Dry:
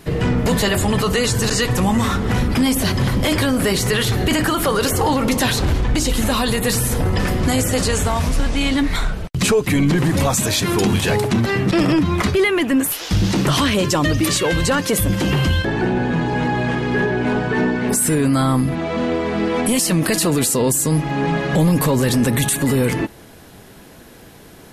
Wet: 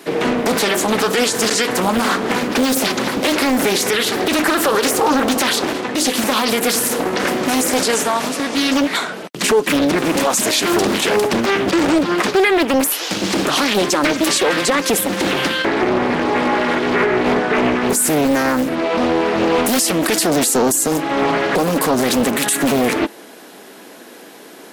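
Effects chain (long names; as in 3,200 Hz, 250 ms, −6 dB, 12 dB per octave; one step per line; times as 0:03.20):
high-pass filter 250 Hz 24 dB per octave
brickwall limiter −12 dBFS, peak gain reduction 6 dB
highs frequency-modulated by the lows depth 0.72 ms
level +5.5 dB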